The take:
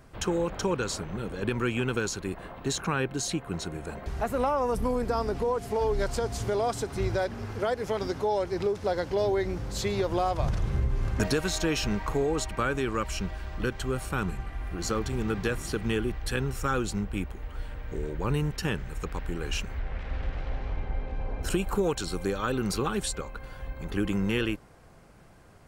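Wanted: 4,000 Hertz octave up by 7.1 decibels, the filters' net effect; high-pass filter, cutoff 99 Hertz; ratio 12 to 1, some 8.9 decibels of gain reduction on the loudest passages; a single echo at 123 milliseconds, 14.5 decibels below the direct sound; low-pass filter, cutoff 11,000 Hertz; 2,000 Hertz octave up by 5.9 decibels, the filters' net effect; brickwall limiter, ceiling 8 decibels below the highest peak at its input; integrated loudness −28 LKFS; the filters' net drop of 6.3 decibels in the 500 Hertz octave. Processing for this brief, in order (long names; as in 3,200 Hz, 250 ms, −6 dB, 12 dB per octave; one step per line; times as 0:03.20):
high-pass filter 99 Hz
low-pass filter 11,000 Hz
parametric band 500 Hz −8.5 dB
parametric band 2,000 Hz +7 dB
parametric band 4,000 Hz +7 dB
downward compressor 12 to 1, threshold −30 dBFS
brickwall limiter −24.5 dBFS
single-tap delay 123 ms −14.5 dB
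level +8.5 dB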